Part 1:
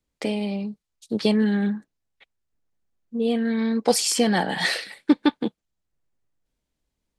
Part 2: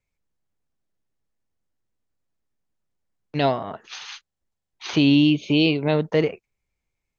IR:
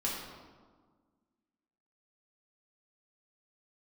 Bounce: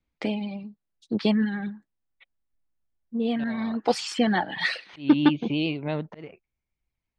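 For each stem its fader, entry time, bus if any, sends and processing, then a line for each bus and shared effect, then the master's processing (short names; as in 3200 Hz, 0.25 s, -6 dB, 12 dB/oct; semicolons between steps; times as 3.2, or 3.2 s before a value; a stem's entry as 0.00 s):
0.0 dB, 0.00 s, no send, reverb removal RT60 1.7 s; notch 570 Hz, Q 12
-7.0 dB, 0.00 s, no send, auto swell 0.288 s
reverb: off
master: LPF 3500 Hz 12 dB/oct; bell 450 Hz -5 dB 0.34 oct; vibrato 11 Hz 28 cents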